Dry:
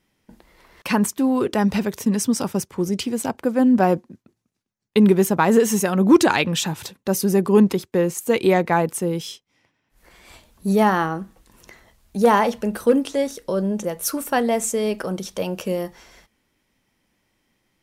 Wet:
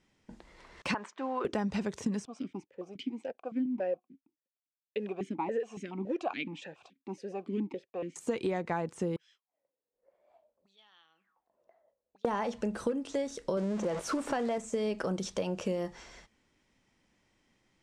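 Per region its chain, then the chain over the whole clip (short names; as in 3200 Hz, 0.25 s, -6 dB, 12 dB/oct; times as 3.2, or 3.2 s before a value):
0.94–1.45 modulation noise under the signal 32 dB + BPF 720–2100 Hz
2.25–8.16 G.711 law mismatch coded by A + vowel sequencer 7.1 Hz
9.16–12.25 compressor 3:1, threshold -31 dBFS + auto-wah 460–3400 Hz, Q 12, up, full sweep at -28.5 dBFS
13.57–14.58 zero-crossing step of -29 dBFS + low shelf 210 Hz -10 dB + fast leveller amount 50%
whole clip: de-esser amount 65%; Chebyshev low-pass 7800 Hz, order 3; compressor 10:1, threshold -26 dBFS; gain -2.5 dB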